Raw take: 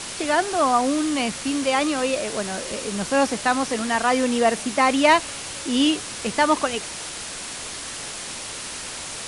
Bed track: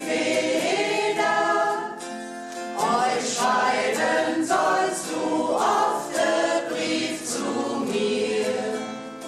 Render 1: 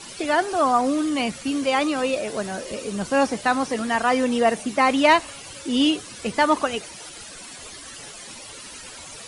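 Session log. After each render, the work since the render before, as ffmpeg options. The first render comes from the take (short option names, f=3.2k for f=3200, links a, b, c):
-af "afftdn=nr=13:nf=-34"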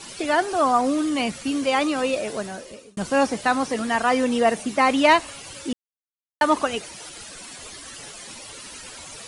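-filter_complex "[0:a]asplit=4[a][b][c][d];[a]atrim=end=2.97,asetpts=PTS-STARTPTS,afade=t=out:st=2.28:d=0.69[e];[b]atrim=start=2.97:end=5.73,asetpts=PTS-STARTPTS,afade=t=in:d=0.004:c=hsin,afade=t=out:st=2.756:d=0.004:c=hsin[f];[c]atrim=start=5.73:end=6.41,asetpts=PTS-STARTPTS,volume=0[g];[d]atrim=start=6.41,asetpts=PTS-STARTPTS,afade=t=in:d=0.004:c=hsin[h];[e][f][g][h]concat=n=4:v=0:a=1"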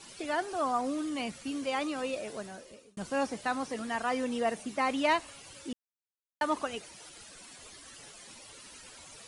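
-af "volume=-11dB"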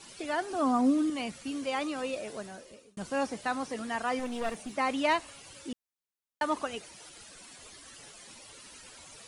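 -filter_complex "[0:a]asettb=1/sr,asplit=3[a][b][c];[a]atrim=end=0.504[d];[b]atrim=start=0.5:end=1.1,asetpts=PTS-STARTPTS,afade=t=in:d=0.004:c=qsin,afade=t=out:st=0.596:d=0.004:c=qsin,equalizer=f=250:t=o:w=0.62:g=13[e];[c]atrim=start=1.096[f];[d][e]acrossfade=d=0.004:c1=hsin:c2=qsin[g];[g][f]acrossfade=d=0.004:c1=qsin:c2=hsin,asettb=1/sr,asplit=3[h][i][j];[h]atrim=end=4.194[k];[i]atrim=start=4.19:end=4.77,asetpts=PTS-STARTPTS,afade=t=in:d=0.004:c=qsin,afade=t=out:st=0.576:d=0.004:c=qsin,aeval=exprs='clip(val(0),-1,0.0126)':c=same[l];[j]atrim=start=4.766[m];[k][l]acrossfade=d=0.004:c1=hsin:c2=qsin[n];[n][m]acrossfade=d=0.004:c1=qsin:c2=hsin"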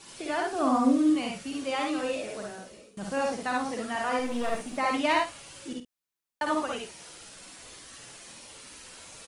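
-filter_complex "[0:a]asplit=2[a][b];[b]adelay=49,volume=-11dB[c];[a][c]amix=inputs=2:normalize=0,aecho=1:1:55|71:0.668|0.631"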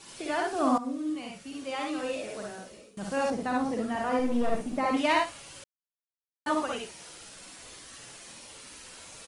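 -filter_complex "[0:a]asettb=1/sr,asplit=3[a][b][c];[a]atrim=end=3.304[d];[b]atrim=start=3.3:end=4.97,asetpts=PTS-STARTPTS,afade=t=in:d=0.004:c=qsin,afade=t=out:st=1.666:d=0.004:c=qsin,tiltshelf=f=730:g=6[e];[c]atrim=start=4.966[f];[d][e]acrossfade=d=0.004:c1=hsin:c2=qsin[g];[g][f]acrossfade=d=0.004:c1=qsin:c2=hsin,asplit=4[h][i][j][k];[h]atrim=end=0.78,asetpts=PTS-STARTPTS,afade=t=out:st=0.776:d=0.004:c=hsin:silence=0.211349[l];[i]atrim=start=0.78:end=5.64,asetpts=PTS-STARTPTS,afade=t=in:d=1.81:silence=0.211349,afade=t=out:st=4.856:d=0.004:c=hsin[m];[j]atrim=start=5.64:end=6.46,asetpts=PTS-STARTPTS,volume=0[n];[k]atrim=start=6.46,asetpts=PTS-STARTPTS,afade=t=in:d=0.004:c=hsin[o];[l][m][n][o]concat=n=4:v=0:a=1"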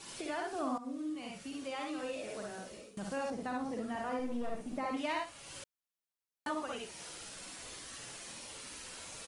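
-af "acompressor=threshold=-42dB:ratio=2"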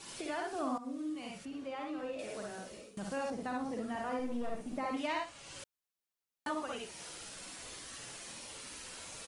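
-filter_complex "[0:a]asettb=1/sr,asplit=3[a][b][c];[a]atrim=end=1.454[d];[b]atrim=start=1.45:end=2.19,asetpts=PTS-STARTPTS,afade=t=in:d=0.004:c=qsin,afade=t=out:st=0.736:d=0.004:c=qsin,lowpass=f=1.6k:p=1[e];[c]atrim=start=2.186[f];[d][e]acrossfade=d=0.004:c1=hsin:c2=qsin[g];[g][f]acrossfade=d=0.004:c1=qsin:c2=hsin,asettb=1/sr,asplit=3[h][i][j];[h]atrim=end=5.074[k];[i]atrim=start=5.07:end=5.59,asetpts=PTS-STARTPTS,afade=t=in:d=0.004:c=qsin,afade=t=out:st=0.516:d=0.004:c=qsin,lowpass=f=8.8k:w=0.5412,lowpass=f=8.8k:w=1.3066[l];[j]atrim=start=5.586[m];[k][l]acrossfade=d=0.004:c1=hsin:c2=qsin[n];[n][m]acrossfade=d=0.004:c1=qsin:c2=hsin"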